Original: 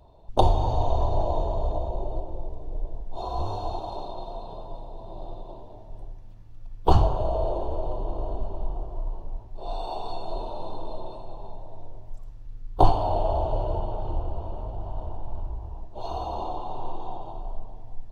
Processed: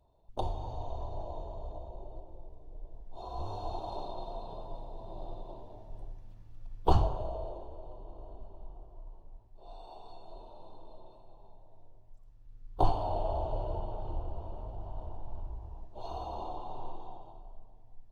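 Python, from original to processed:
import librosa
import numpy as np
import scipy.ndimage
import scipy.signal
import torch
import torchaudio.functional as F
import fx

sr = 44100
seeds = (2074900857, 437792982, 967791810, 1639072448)

y = fx.gain(x, sr, db=fx.line((2.78, -15.0), (3.95, -4.5), (6.79, -4.5), (7.73, -17.0), (12.2, -17.0), (12.91, -8.0), (16.82, -8.0), (17.51, -16.0)))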